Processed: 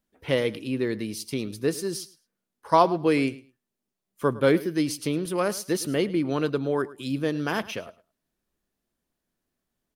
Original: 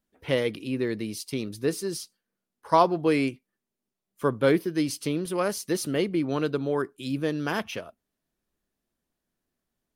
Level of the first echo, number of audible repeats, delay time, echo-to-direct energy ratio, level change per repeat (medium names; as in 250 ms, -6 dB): -18.5 dB, 2, 107 ms, -18.5 dB, -15.5 dB